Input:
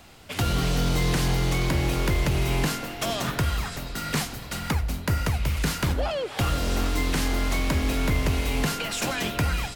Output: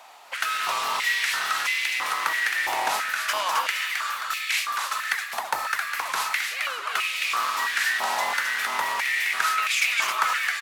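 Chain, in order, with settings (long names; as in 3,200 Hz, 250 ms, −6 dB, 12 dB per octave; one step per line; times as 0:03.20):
echo with shifted repeats 244 ms, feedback 37%, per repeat −130 Hz, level −4 dB
wrong playback speed 48 kHz file played as 44.1 kHz
high-pass on a step sequencer 3 Hz 850–2,300 Hz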